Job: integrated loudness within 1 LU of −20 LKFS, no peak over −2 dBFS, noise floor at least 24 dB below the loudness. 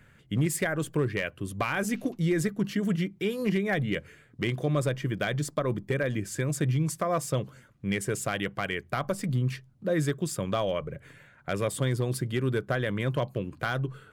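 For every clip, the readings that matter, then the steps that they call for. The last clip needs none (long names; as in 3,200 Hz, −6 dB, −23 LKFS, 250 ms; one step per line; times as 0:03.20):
share of clipped samples 0.3%; peaks flattened at −18.5 dBFS; integrated loudness −29.5 LKFS; sample peak −18.5 dBFS; target loudness −20.0 LKFS
→ clipped peaks rebuilt −18.5 dBFS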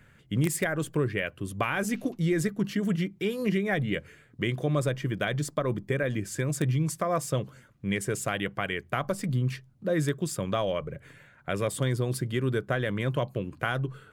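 share of clipped samples 0.0%; integrated loudness −29.5 LKFS; sample peak −10.0 dBFS; target loudness −20.0 LKFS
→ level +9.5 dB
brickwall limiter −2 dBFS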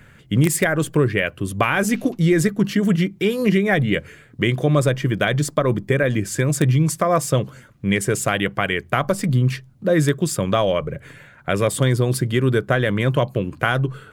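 integrated loudness −20.0 LKFS; sample peak −2.0 dBFS; background noise floor −49 dBFS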